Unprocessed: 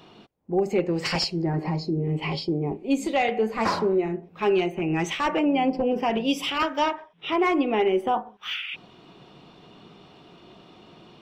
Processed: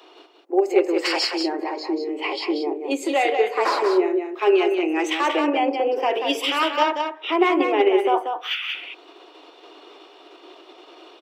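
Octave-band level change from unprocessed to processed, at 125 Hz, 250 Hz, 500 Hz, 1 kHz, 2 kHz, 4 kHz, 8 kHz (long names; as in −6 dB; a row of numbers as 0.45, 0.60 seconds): below −35 dB, +1.0 dB, +5.0 dB, +4.5 dB, +4.5 dB, +4.5 dB, +3.0 dB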